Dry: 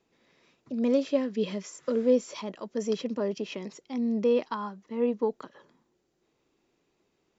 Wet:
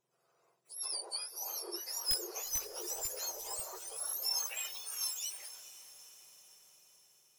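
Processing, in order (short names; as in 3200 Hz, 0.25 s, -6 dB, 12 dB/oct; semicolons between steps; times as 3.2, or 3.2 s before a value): spectrum mirrored in octaves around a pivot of 1600 Hz; wrapped overs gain 16 dB; echoes that change speed 0.779 s, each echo +3 st, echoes 3; on a send: diffused feedback echo 0.455 s, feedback 60%, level -14 dB; on the sum: gain -7.5 dB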